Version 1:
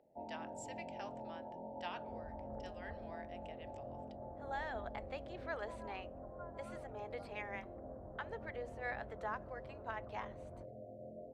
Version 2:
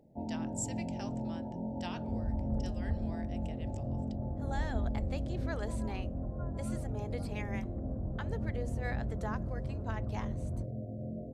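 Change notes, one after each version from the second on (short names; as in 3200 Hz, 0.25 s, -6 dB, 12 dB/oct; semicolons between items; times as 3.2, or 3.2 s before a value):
master: remove three-band isolator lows -19 dB, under 450 Hz, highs -17 dB, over 3500 Hz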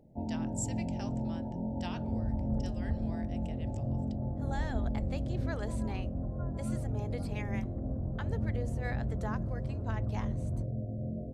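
first sound: add low shelf 130 Hz +8.5 dB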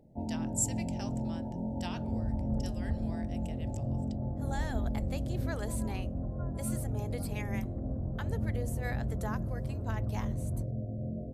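speech: remove air absorption 80 m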